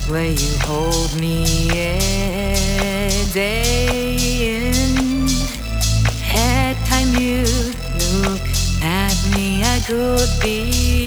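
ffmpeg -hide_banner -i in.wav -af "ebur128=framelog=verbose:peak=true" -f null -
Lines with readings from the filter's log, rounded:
Integrated loudness:
  I:         -17.9 LUFS
  Threshold: -27.9 LUFS
Loudness range:
  LRA:         0.7 LU
  Threshold: -37.8 LUFS
  LRA low:   -18.1 LUFS
  LRA high:  -17.4 LUFS
True peak:
  Peak:       -4.7 dBFS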